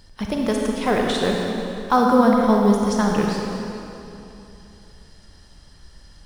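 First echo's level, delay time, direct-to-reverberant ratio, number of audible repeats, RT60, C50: none, none, -1.0 dB, none, 2.9 s, 0.0 dB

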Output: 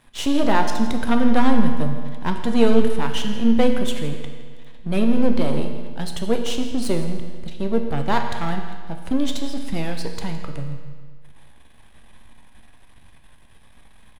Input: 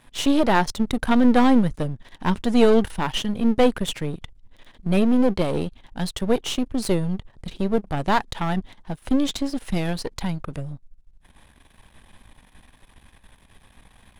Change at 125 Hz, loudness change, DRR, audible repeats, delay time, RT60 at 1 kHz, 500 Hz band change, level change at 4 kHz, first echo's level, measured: -0.5 dB, -0.5 dB, 3.5 dB, 1, 0.164 s, 1.7 s, -0.5 dB, -0.5 dB, -16.5 dB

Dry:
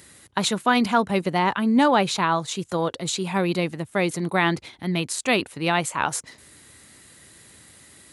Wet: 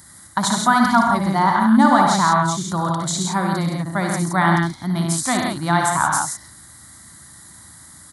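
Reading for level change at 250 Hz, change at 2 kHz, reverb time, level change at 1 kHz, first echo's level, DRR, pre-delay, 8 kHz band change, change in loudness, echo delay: +5.0 dB, +3.5 dB, none, +7.0 dB, -7.0 dB, none, none, +7.0 dB, +5.0 dB, 59 ms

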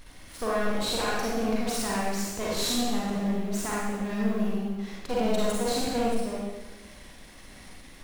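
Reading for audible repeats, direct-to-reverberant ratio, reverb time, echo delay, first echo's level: none, -6.0 dB, 1.2 s, none, none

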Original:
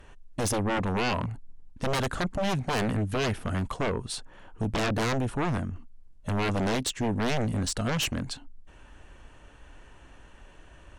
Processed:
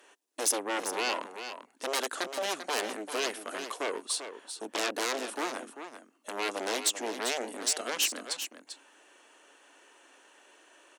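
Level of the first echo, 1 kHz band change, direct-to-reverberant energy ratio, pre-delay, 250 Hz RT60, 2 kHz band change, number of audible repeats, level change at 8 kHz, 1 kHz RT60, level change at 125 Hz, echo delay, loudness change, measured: -9.5 dB, -3.0 dB, none, none, none, -1.5 dB, 1, +5.0 dB, none, under -35 dB, 0.393 s, -3.0 dB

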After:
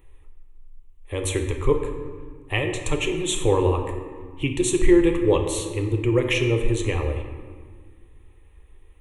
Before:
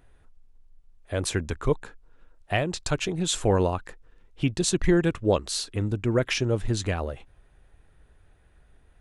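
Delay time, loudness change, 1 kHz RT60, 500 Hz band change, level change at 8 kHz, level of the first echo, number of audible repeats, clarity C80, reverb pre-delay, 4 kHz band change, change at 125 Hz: none, +3.5 dB, 1.6 s, +5.0 dB, +1.5 dB, none, none, 7.5 dB, 3 ms, +0.5 dB, +2.0 dB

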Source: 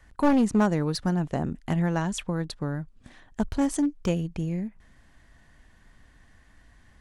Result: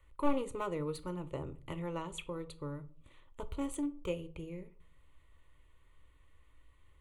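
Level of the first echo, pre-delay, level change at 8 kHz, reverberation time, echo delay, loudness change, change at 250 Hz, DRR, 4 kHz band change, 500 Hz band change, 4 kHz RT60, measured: none, 4 ms, -12.5 dB, 0.45 s, none, -13.0 dB, -14.5 dB, 11.0 dB, -11.5 dB, -8.0 dB, 0.30 s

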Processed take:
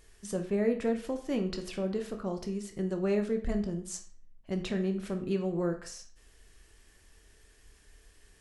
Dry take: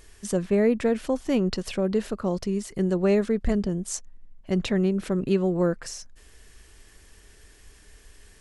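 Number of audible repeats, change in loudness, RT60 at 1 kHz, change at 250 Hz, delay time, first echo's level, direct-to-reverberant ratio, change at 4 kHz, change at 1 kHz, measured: none, -7.5 dB, 0.45 s, -7.5 dB, none, none, 5.0 dB, -7.5 dB, -7.0 dB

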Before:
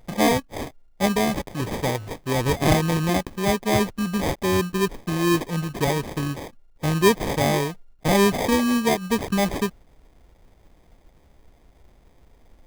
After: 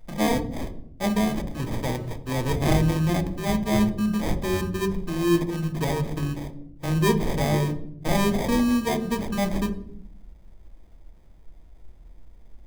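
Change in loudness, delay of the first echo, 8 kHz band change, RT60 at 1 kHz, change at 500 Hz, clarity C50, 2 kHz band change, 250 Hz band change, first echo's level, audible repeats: -2.5 dB, none, -5.5 dB, 0.55 s, -4.5 dB, 13.0 dB, -5.0 dB, -0.5 dB, none, none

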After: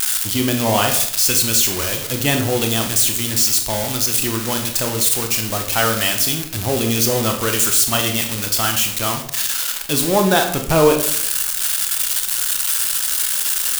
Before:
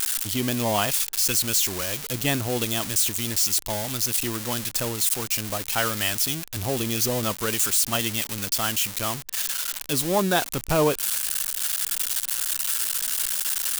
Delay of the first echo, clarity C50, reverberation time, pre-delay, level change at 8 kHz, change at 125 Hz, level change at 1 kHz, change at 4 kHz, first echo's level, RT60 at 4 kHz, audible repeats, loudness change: none, 8.0 dB, 0.65 s, 23 ms, +6.5 dB, +7.0 dB, +7.0 dB, +7.0 dB, none, 0.50 s, none, +7.0 dB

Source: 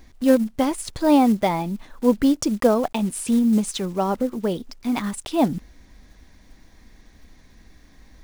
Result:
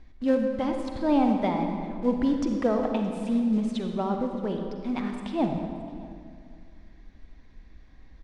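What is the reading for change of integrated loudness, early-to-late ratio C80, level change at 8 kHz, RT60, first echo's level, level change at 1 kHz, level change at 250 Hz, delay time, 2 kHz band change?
-5.5 dB, 5.0 dB, under -20 dB, 2.2 s, -22.5 dB, -5.5 dB, -5.0 dB, 0.62 s, -6.5 dB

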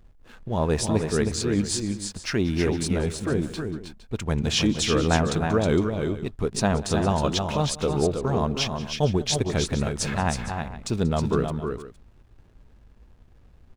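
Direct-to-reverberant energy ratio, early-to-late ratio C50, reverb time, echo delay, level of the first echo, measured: none, none, none, 0.185 s, -19.0 dB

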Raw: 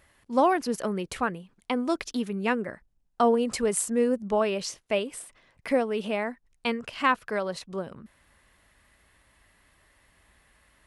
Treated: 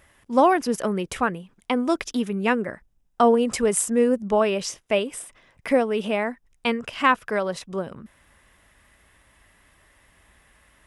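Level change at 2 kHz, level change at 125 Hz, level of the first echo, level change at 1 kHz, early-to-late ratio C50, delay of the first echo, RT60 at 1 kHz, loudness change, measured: +4.5 dB, +4.5 dB, none, +4.5 dB, none, none, none, +4.5 dB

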